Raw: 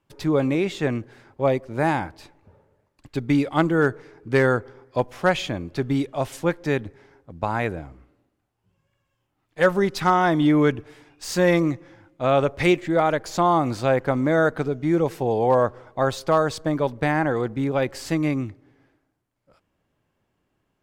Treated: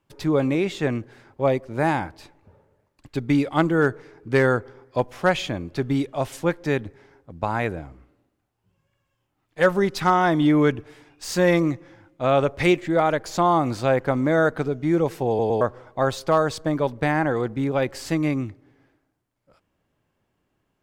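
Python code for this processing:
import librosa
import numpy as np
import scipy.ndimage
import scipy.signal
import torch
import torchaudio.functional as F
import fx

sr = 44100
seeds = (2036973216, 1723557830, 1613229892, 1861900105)

y = fx.edit(x, sr, fx.stutter_over(start_s=15.28, slice_s=0.11, count=3), tone=tone)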